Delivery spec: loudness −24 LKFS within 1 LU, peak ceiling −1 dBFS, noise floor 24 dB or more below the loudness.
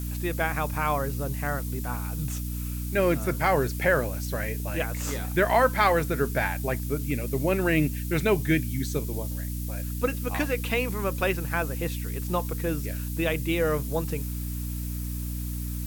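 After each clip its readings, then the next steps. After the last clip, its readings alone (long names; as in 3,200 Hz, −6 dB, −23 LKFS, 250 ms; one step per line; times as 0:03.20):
mains hum 60 Hz; hum harmonics up to 300 Hz; level of the hum −29 dBFS; background noise floor −32 dBFS; target noise floor −52 dBFS; integrated loudness −27.5 LKFS; sample peak −9.0 dBFS; target loudness −24.0 LKFS
→ mains-hum notches 60/120/180/240/300 Hz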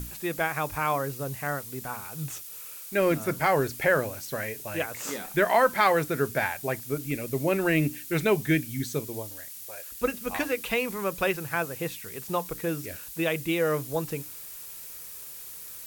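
mains hum none found; background noise floor −42 dBFS; target noise floor −52 dBFS
→ noise reduction from a noise print 10 dB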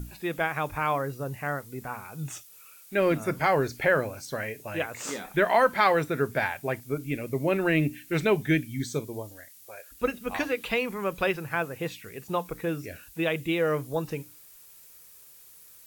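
background noise floor −52 dBFS; integrated loudness −28.0 LKFS; sample peak −9.5 dBFS; target loudness −24.0 LKFS
→ level +4 dB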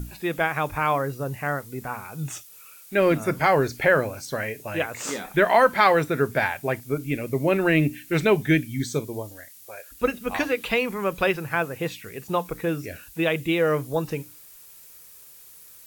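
integrated loudness −24.0 LKFS; sample peak −5.5 dBFS; background noise floor −48 dBFS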